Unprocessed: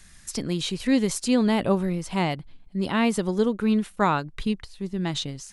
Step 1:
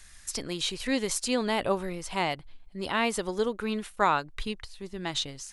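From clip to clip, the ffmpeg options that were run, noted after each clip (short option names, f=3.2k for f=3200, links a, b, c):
-af "equalizer=f=180:t=o:w=1.8:g=-12"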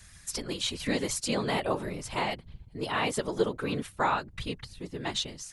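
-filter_complex "[0:a]asplit=2[a][b];[b]alimiter=limit=-18dB:level=0:latency=1:release=142,volume=-1.5dB[c];[a][c]amix=inputs=2:normalize=0,afftfilt=real='hypot(re,im)*cos(2*PI*random(0))':imag='hypot(re,im)*sin(2*PI*random(1))':win_size=512:overlap=0.75"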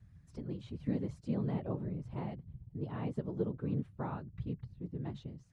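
-af "bandpass=f=130:t=q:w=1.4:csg=0,volume=3dB"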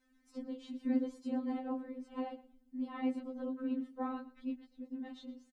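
-af "aecho=1:1:117|234:0.119|0.0202,afftfilt=real='re*3.46*eq(mod(b,12),0)':imag='im*3.46*eq(mod(b,12),0)':win_size=2048:overlap=0.75,volume=4.5dB"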